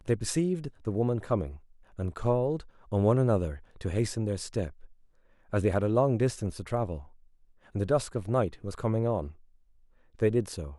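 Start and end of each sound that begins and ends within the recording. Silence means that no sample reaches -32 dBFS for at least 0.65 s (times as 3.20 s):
5.53–6.97 s
7.75–9.28 s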